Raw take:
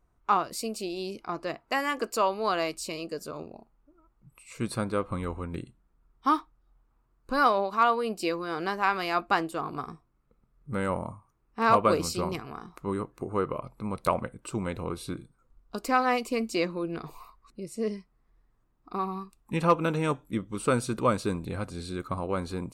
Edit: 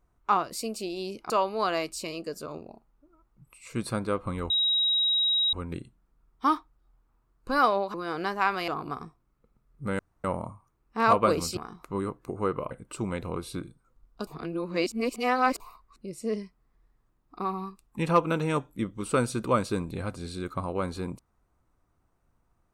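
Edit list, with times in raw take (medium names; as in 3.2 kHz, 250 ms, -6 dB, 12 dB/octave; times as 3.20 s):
1.30–2.15 s: delete
5.35 s: add tone 3.82 kHz -21.5 dBFS 1.03 s
7.76–8.36 s: delete
9.10–9.55 s: delete
10.86 s: insert room tone 0.25 s
12.19–12.50 s: delete
13.64–14.25 s: delete
15.81–17.14 s: reverse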